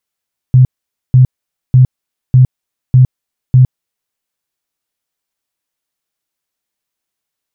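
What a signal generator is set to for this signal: tone bursts 128 Hz, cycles 14, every 0.60 s, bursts 6, -2 dBFS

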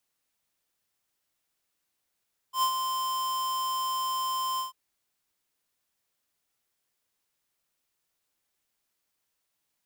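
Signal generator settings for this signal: ADSR square 1040 Hz, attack 96 ms, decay 80 ms, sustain -6.5 dB, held 2.06 s, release 0.133 s -23.5 dBFS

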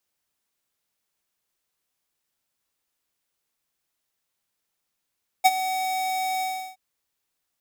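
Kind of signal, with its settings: ADSR square 752 Hz, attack 19 ms, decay 38 ms, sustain -13.5 dB, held 0.97 s, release 0.351 s -13 dBFS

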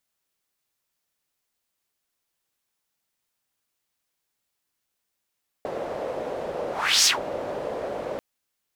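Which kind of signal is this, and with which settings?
whoosh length 2.54 s, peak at 1.4, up 0.36 s, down 0.15 s, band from 550 Hz, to 5800 Hz, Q 3.1, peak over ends 14.5 dB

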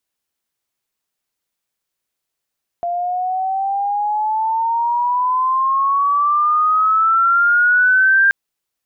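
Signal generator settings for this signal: chirp logarithmic 690 Hz -> 1600 Hz -18 dBFS -> -9 dBFS 5.48 s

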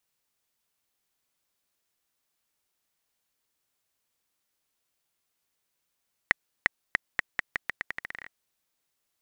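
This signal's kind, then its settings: bouncing ball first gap 0.35 s, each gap 0.83, 1900 Hz, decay 12 ms -4 dBFS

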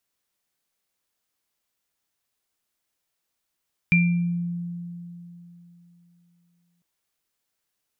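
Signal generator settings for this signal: sine partials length 2.90 s, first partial 173 Hz, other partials 2370 Hz, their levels 0.5 dB, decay 3.28 s, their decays 0.51 s, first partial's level -15.5 dB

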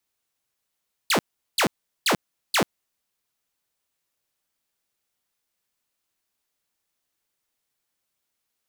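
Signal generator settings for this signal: burst of laser zaps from 5000 Hz, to 140 Hz, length 0.09 s saw, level -15 dB, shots 4, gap 0.39 s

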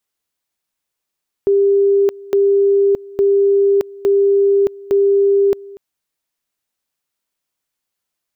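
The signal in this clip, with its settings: two-level tone 398 Hz -9.5 dBFS, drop 22 dB, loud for 0.62 s, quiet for 0.24 s, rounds 5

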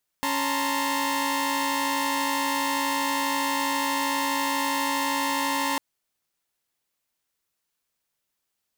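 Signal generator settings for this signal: chord C#4/A5/A#5/C6 saw, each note -27 dBFS 5.55 s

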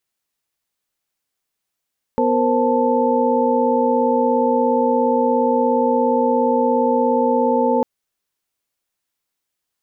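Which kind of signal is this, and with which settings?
chord B3/A#4/C5/A5 sine, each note -19.5 dBFS 5.65 s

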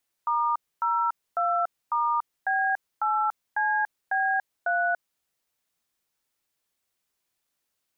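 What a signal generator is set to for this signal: DTMF "*02*B8CB3", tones 0.287 s, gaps 0.262 s, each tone -24.5 dBFS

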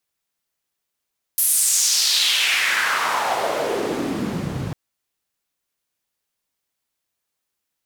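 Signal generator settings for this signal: swept filtered noise white, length 3.35 s bandpass, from 12000 Hz, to 110 Hz, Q 2.6, exponential, gain ramp +9.5 dB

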